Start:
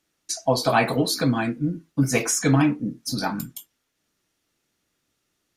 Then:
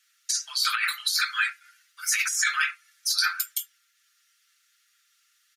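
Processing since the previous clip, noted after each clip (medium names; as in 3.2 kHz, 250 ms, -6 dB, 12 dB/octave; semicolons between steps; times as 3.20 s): Chebyshev high-pass 1.3 kHz, order 6; comb 5.8 ms, depth 78%; compressor with a negative ratio -29 dBFS, ratio -1; trim +5 dB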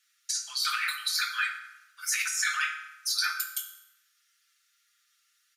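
reverberation RT60 0.95 s, pre-delay 3 ms, DRR 4 dB; trim -4.5 dB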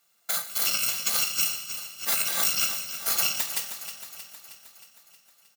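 bit-reversed sample order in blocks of 128 samples; on a send: feedback delay 314 ms, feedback 60%, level -11 dB; on the sum: trim +3.5 dB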